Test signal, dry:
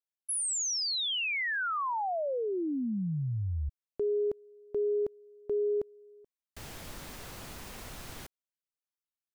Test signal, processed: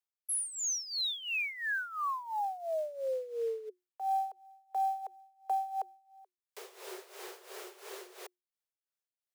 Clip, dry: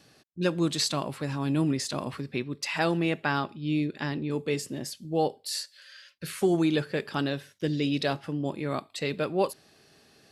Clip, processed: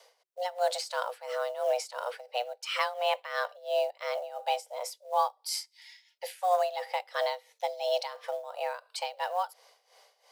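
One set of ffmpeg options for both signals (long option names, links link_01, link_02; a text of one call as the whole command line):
ffmpeg -i in.wav -af "tremolo=f=2.9:d=0.81,acrusher=bits=7:mode=log:mix=0:aa=0.000001,afreqshift=360" out.wav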